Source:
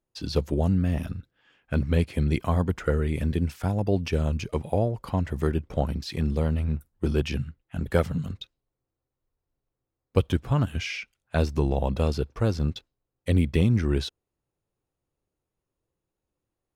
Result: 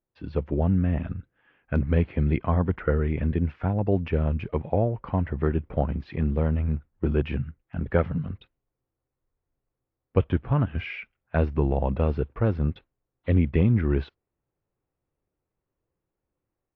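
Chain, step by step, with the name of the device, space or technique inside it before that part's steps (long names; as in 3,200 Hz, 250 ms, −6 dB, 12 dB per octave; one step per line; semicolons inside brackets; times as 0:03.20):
action camera in a waterproof case (low-pass filter 2,400 Hz 24 dB per octave; automatic gain control gain up to 4.5 dB; level −3.5 dB; AAC 48 kbit/s 22,050 Hz)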